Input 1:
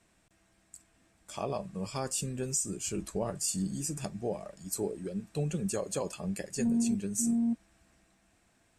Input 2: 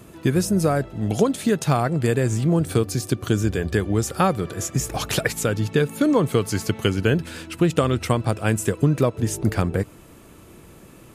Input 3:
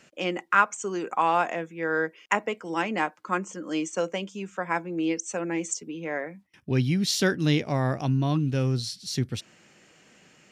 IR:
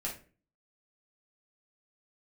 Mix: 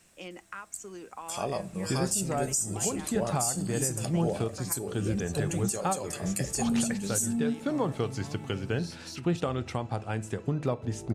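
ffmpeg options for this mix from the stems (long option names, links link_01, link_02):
-filter_complex "[0:a]crystalizer=i=2:c=0,volume=1dB,asplit=2[link_01][link_02];[link_02]volume=-14dB[link_03];[1:a]lowpass=6600,equalizer=frequency=820:width=4.3:gain=8.5,adelay=1650,volume=-11dB,asplit=2[link_04][link_05];[link_05]volume=-12.5dB[link_06];[2:a]bass=frequency=250:gain=3,treble=frequency=4000:gain=6,acompressor=threshold=-26dB:ratio=6,volume=-12.5dB[link_07];[3:a]atrim=start_sample=2205[link_08];[link_03][link_06]amix=inputs=2:normalize=0[link_09];[link_09][link_08]afir=irnorm=-1:irlink=0[link_10];[link_01][link_04][link_07][link_10]amix=inputs=4:normalize=0,alimiter=limit=-17.5dB:level=0:latency=1:release=327"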